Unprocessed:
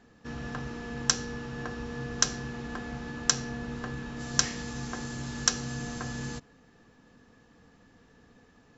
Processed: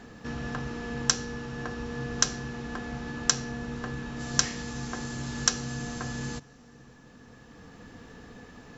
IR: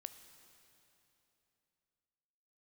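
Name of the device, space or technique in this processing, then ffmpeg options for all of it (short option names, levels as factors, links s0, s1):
ducked reverb: -filter_complex "[0:a]asplit=3[s0][s1][s2];[1:a]atrim=start_sample=2205[s3];[s1][s3]afir=irnorm=-1:irlink=0[s4];[s2]apad=whole_len=386884[s5];[s4][s5]sidechaincompress=threshold=0.00251:ratio=6:attack=10:release=1070,volume=5.31[s6];[s0][s6]amix=inputs=2:normalize=0"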